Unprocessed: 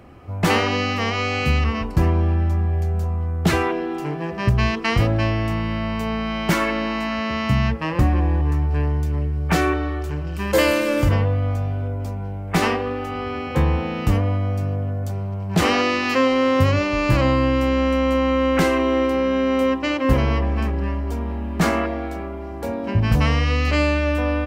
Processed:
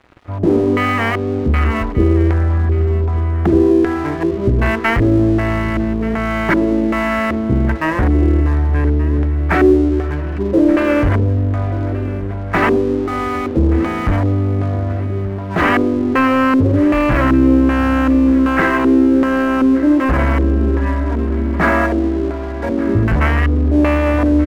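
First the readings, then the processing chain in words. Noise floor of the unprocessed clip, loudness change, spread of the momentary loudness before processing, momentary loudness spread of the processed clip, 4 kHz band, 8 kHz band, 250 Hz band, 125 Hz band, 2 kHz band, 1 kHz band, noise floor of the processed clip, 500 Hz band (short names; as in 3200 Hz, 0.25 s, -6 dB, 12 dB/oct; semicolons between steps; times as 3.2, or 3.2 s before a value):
-29 dBFS, +5.5 dB, 8 LU, 7 LU, -5.0 dB, n/a, +9.0 dB, +4.0 dB, +4.5 dB, +4.0 dB, -22 dBFS, +5.0 dB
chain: bell 2100 Hz -2.5 dB 1.2 oct; comb 3.1 ms, depth 46%; de-hum 175.4 Hz, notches 3; in parallel at -10 dB: sine folder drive 11 dB, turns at -4 dBFS; on the sum: LFO low-pass square 1.3 Hz 380–1800 Hz; crossover distortion -32 dBFS; on a send: feedback echo 1.18 s, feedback 41%, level -17 dB; on the sum: gain -2 dB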